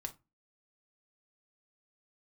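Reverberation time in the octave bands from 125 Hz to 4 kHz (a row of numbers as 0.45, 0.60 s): 0.35, 0.35, 0.20, 0.25, 0.20, 0.15 s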